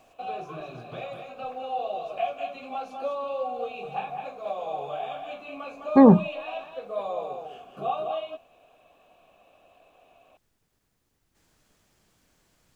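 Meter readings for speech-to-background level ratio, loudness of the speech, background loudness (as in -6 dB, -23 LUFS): 16.0 dB, -17.5 LUFS, -33.5 LUFS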